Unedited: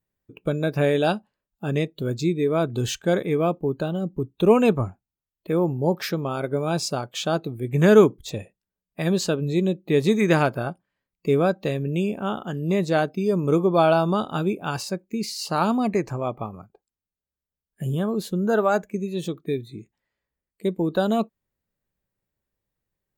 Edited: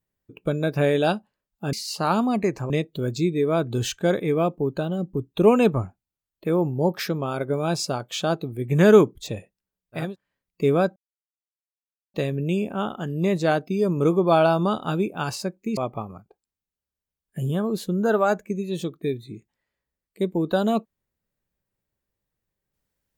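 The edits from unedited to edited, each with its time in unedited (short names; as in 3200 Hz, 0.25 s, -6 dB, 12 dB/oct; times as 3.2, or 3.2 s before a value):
9.07–10.69 cut, crossfade 0.24 s
11.61 insert silence 1.18 s
15.24–16.21 move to 1.73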